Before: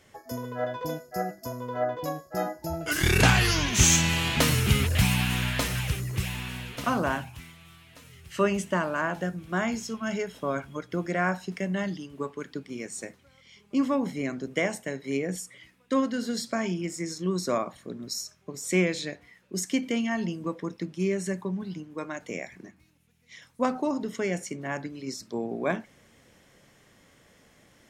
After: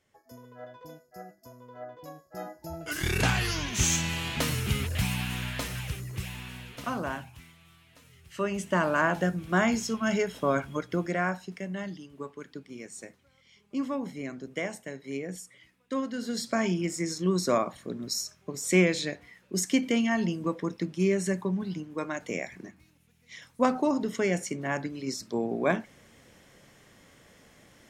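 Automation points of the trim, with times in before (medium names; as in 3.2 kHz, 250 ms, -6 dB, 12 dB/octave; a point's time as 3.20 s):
1.89 s -14.5 dB
2.80 s -6 dB
8.47 s -6 dB
8.88 s +3.5 dB
10.77 s +3.5 dB
11.54 s -6 dB
16.03 s -6 dB
16.60 s +2 dB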